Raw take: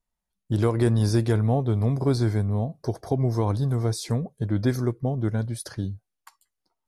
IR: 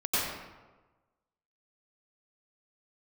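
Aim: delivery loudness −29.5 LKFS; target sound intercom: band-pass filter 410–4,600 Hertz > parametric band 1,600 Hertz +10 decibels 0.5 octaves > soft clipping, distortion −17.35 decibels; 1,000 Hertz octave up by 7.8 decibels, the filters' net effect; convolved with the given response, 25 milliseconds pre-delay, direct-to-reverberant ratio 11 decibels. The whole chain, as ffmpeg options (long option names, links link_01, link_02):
-filter_complex "[0:a]equalizer=frequency=1000:width_type=o:gain=9,asplit=2[link_01][link_02];[1:a]atrim=start_sample=2205,adelay=25[link_03];[link_02][link_03]afir=irnorm=-1:irlink=0,volume=-21.5dB[link_04];[link_01][link_04]amix=inputs=2:normalize=0,highpass=410,lowpass=4600,equalizer=frequency=1600:width_type=o:width=0.5:gain=10,asoftclip=threshold=-15dB,volume=1dB"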